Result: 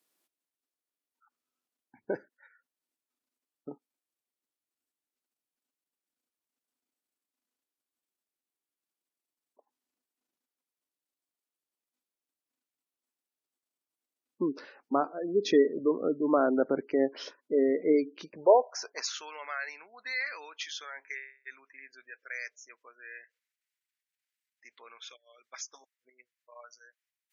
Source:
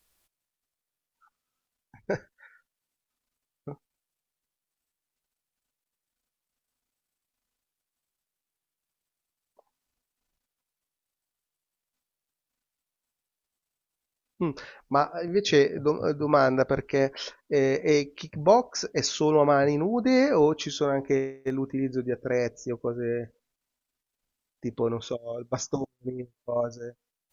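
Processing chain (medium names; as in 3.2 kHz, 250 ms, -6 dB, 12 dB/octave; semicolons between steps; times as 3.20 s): high-pass sweep 280 Hz -> 1.9 kHz, 18.20–19.38 s; spectral gate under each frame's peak -25 dB strong; trim -6.5 dB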